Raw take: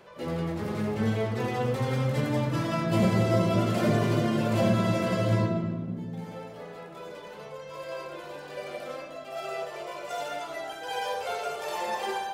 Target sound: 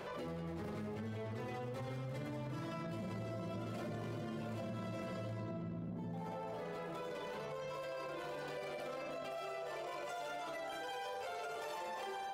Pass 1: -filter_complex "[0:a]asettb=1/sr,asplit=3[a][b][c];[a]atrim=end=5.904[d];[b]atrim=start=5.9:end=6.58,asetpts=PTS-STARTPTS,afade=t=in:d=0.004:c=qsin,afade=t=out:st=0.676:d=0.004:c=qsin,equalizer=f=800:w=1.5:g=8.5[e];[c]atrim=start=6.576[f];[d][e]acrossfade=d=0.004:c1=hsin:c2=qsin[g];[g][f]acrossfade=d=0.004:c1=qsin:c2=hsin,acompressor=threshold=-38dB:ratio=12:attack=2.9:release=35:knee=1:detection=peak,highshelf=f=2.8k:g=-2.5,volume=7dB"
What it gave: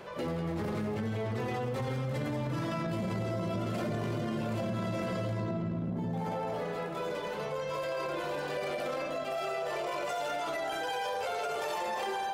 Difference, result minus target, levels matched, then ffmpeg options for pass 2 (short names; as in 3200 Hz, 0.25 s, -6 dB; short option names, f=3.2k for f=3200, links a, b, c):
compressor: peak gain reduction -9.5 dB
-filter_complex "[0:a]asettb=1/sr,asplit=3[a][b][c];[a]atrim=end=5.904[d];[b]atrim=start=5.9:end=6.58,asetpts=PTS-STARTPTS,afade=t=in:d=0.004:c=qsin,afade=t=out:st=0.676:d=0.004:c=qsin,equalizer=f=800:w=1.5:g=8.5[e];[c]atrim=start=6.576[f];[d][e]acrossfade=d=0.004:c1=hsin:c2=qsin[g];[g][f]acrossfade=d=0.004:c1=qsin:c2=hsin,acompressor=threshold=-48.5dB:ratio=12:attack=2.9:release=35:knee=1:detection=peak,highshelf=f=2.8k:g=-2.5,volume=7dB"